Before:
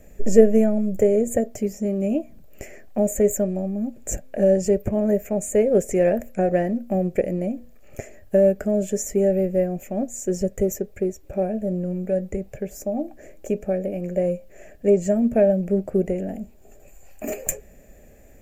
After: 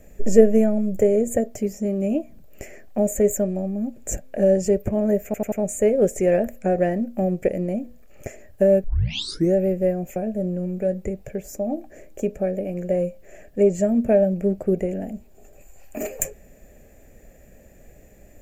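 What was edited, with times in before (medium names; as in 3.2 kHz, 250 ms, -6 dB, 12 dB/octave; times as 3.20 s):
5.25 s: stutter 0.09 s, 4 plays
8.57 s: tape start 0.71 s
9.89–11.43 s: delete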